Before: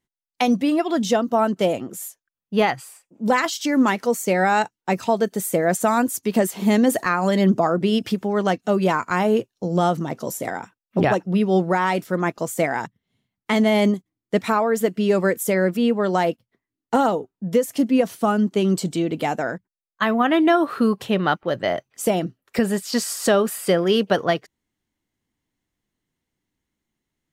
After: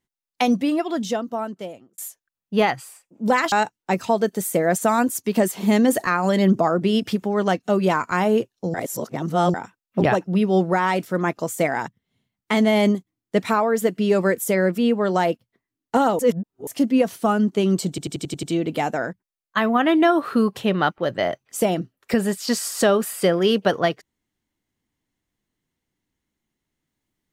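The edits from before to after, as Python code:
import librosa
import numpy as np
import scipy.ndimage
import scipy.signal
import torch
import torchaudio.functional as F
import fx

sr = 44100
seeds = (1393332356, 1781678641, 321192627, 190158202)

y = fx.edit(x, sr, fx.fade_out_span(start_s=0.46, length_s=1.52),
    fx.cut(start_s=3.52, length_s=0.99),
    fx.reverse_span(start_s=9.73, length_s=0.8),
    fx.reverse_span(start_s=17.18, length_s=0.48),
    fx.stutter(start_s=18.88, slice_s=0.09, count=7), tone=tone)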